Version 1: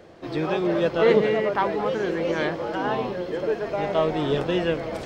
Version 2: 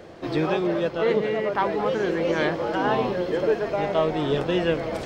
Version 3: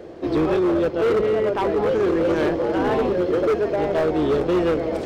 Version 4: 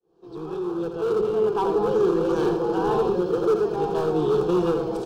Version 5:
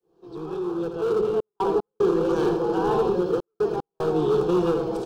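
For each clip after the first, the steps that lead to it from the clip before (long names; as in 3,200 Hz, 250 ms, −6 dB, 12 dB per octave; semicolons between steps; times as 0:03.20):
speech leveller within 5 dB 0.5 s
sub-octave generator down 2 octaves, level −5 dB; parametric band 370 Hz +10.5 dB 1.6 octaves; hard clipping −13.5 dBFS, distortion −11 dB; level −2.5 dB
fade in at the beginning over 1.67 s; phaser with its sweep stopped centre 400 Hz, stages 8; single-tap delay 83 ms −7 dB
gate pattern "xxxxxxx.x." 75 BPM −60 dB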